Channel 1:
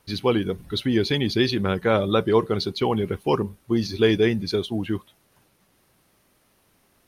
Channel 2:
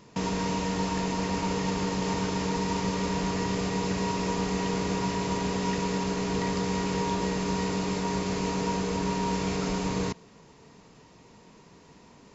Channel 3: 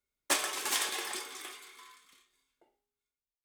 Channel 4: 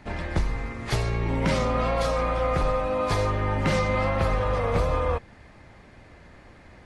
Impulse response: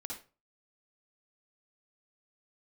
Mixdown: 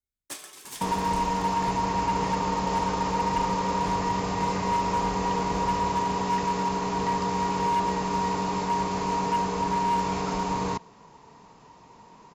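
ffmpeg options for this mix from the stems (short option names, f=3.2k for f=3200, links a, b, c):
-filter_complex "[1:a]equalizer=f=940:w=1.9:g=11.5,asoftclip=type=hard:threshold=-18dB,adelay=650,volume=-2dB[a];[2:a]bass=f=250:g=15,treble=f=4k:g=6,volume=-13.5dB[b];[3:a]adelay=750,volume=-14.5dB[c];[a][b][c]amix=inputs=3:normalize=0"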